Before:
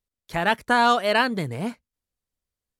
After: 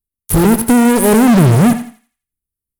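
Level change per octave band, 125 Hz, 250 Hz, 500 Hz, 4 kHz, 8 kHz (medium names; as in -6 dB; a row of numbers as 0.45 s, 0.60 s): +22.0 dB, +20.0 dB, +10.5 dB, +0.5 dB, +23.5 dB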